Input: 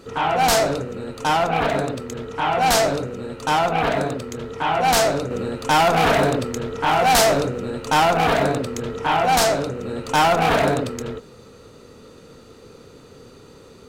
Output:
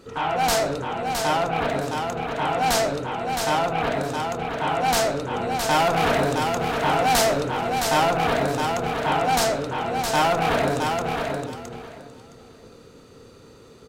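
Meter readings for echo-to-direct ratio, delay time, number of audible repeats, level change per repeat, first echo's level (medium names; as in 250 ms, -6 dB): -5.0 dB, 665 ms, 3, -15.0 dB, -5.0 dB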